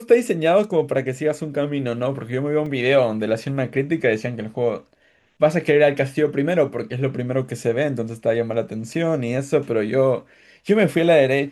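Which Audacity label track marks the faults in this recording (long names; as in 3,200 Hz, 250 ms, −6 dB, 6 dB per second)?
2.660000	2.660000	drop-out 3.8 ms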